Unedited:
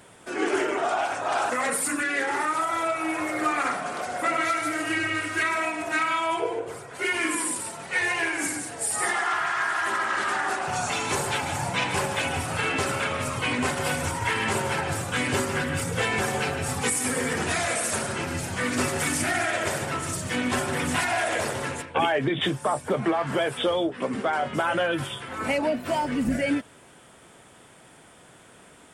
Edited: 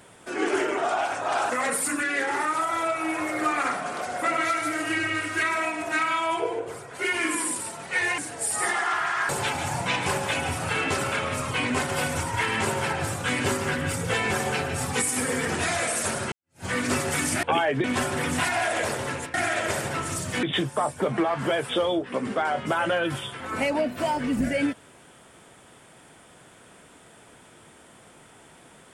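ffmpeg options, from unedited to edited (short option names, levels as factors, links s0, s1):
-filter_complex "[0:a]asplit=8[s0][s1][s2][s3][s4][s5][s6][s7];[s0]atrim=end=8.182[s8];[s1]atrim=start=8.578:end=9.692[s9];[s2]atrim=start=11.168:end=18.2,asetpts=PTS-STARTPTS,afade=t=out:st=7.028:d=0.004:c=hsin[s10];[s3]atrim=start=18.2:end=19.312,asetpts=PTS-STARTPTS,afade=t=in:d=0.33:c=exp[s11];[s4]atrim=start=21.898:end=22.312[s12];[s5]atrim=start=20.398:end=21.902[s13];[s6]atrim=start=19.308:end=20.402[s14];[s7]atrim=start=22.308[s15];[s8][s9]acrossfade=d=0.004:c1=hsin:c2=hsin[s16];[s10][s11]concat=n=2:v=0:a=1[s17];[s16][s17]acrossfade=d=0.004:c1=hsin:c2=hsin[s18];[s18][s12]acrossfade=d=0.004:c1=hsin:c2=hsin[s19];[s19][s13]acrossfade=d=0.004:c1=hsin:c2=hsin[s20];[s20][s14]acrossfade=d=0.004:c1=hsin:c2=hsin[s21];[s21][s15]acrossfade=d=0.004:c1=hsin:c2=hsin"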